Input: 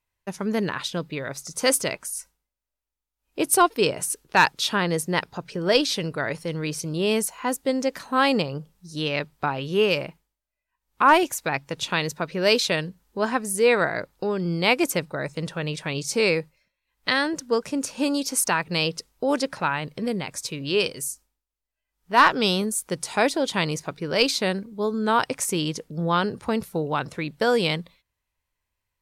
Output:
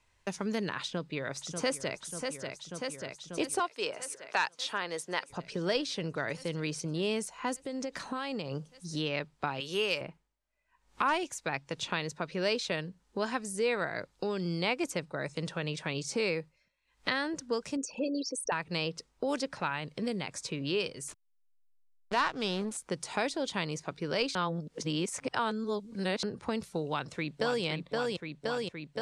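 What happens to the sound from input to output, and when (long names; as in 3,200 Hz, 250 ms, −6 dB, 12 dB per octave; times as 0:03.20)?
0:00.82–0:01.98: delay throw 590 ms, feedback 75%, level −11 dB
0:03.59–0:05.30: Bessel high-pass filter 600 Hz
0:07.65–0:08.51: downward compressor 5 to 1, threshold −29 dBFS
0:09.60–0:10.01: RIAA equalisation recording
0:17.76–0:18.52: spectral envelope exaggerated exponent 3
0:21.08–0:22.77: slack as between gear wheels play −27.5 dBFS
0:24.35–0:26.23: reverse
0:26.87–0:27.64: delay throw 520 ms, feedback 70%, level −3.5 dB
whole clip: low-pass filter 8,900 Hz 24 dB per octave; multiband upward and downward compressor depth 70%; level −9 dB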